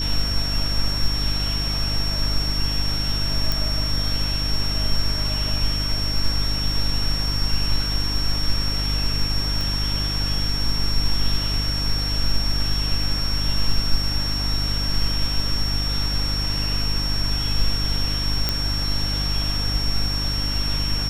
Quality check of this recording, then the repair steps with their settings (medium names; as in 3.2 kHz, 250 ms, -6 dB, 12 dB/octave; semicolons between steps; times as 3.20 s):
hum 50 Hz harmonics 6 -26 dBFS
whine 5.5 kHz -25 dBFS
3.52 s: pop
9.61 s: pop
18.49 s: pop -5 dBFS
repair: de-click; de-hum 50 Hz, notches 6; band-stop 5.5 kHz, Q 30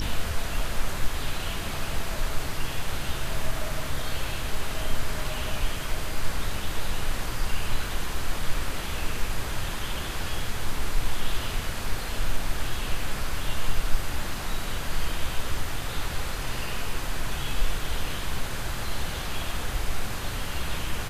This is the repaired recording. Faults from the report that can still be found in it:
9.61 s: pop